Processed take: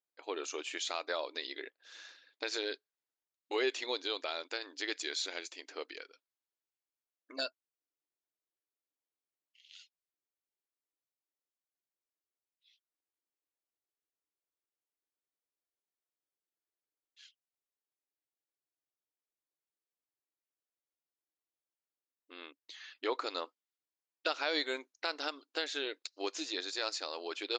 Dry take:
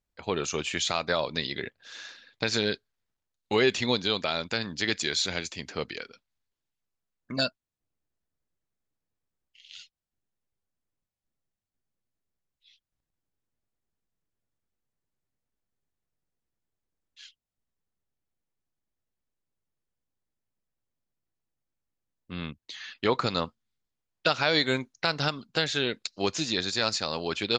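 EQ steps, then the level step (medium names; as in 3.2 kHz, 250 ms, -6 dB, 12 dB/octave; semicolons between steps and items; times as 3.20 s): brick-wall FIR high-pass 270 Hz; -9.0 dB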